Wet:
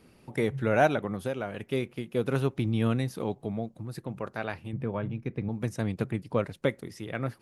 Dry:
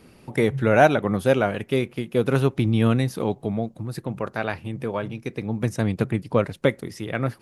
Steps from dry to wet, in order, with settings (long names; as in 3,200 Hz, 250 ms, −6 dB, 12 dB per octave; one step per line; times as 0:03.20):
0:00.99–0:01.73: downward compressor 6 to 1, threshold −21 dBFS, peak gain reduction 8.5 dB
0:04.73–0:05.49: bass and treble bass +8 dB, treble −15 dB
level −7 dB